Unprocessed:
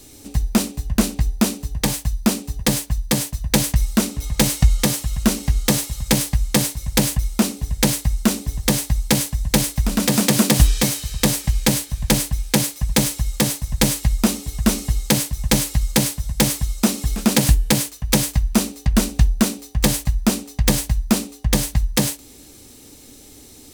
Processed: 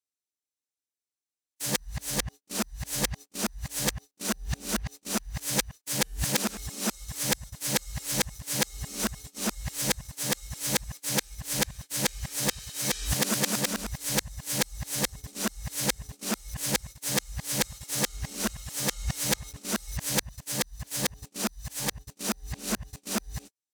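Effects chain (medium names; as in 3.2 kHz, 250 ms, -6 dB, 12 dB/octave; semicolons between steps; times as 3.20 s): reverse the whole clip; high-pass 170 Hz 6 dB/octave; gate -31 dBFS, range -51 dB; fifteen-band graphic EQ 250 Hz -6 dB, 1.6 kHz +4 dB, 6.3 kHz +3 dB; tape noise reduction on one side only encoder only; trim -9 dB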